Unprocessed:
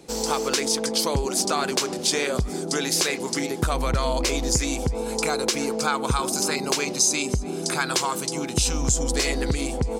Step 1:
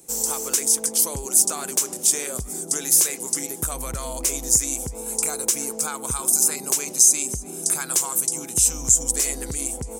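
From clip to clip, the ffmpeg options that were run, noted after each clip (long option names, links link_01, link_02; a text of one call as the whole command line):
ffmpeg -i in.wav -af "aexciter=amount=12.9:drive=1.3:freq=6400,volume=-8dB" out.wav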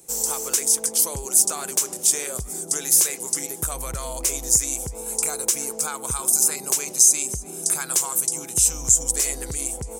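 ffmpeg -i in.wav -af "equalizer=frequency=250:width=2.4:gain=-6" out.wav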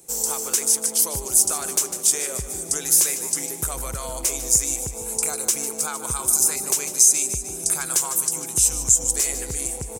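ffmpeg -i in.wav -af "aecho=1:1:150|300|450|600|750|900:0.251|0.143|0.0816|0.0465|0.0265|0.0151" out.wav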